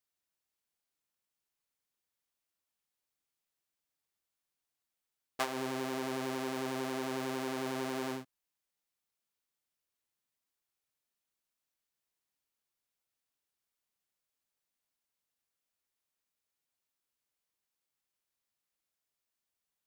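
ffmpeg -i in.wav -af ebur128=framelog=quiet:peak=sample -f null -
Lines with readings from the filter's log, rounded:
Integrated loudness:
  I:         -37.0 LUFS
  Threshold: -47.3 LUFS
Loudness range:
  LRA:         8.9 LU
  Threshold: -59.8 LUFS
  LRA low:   -45.9 LUFS
  LRA high:  -37.0 LUFS
Sample peak:
  Peak:      -15.1 dBFS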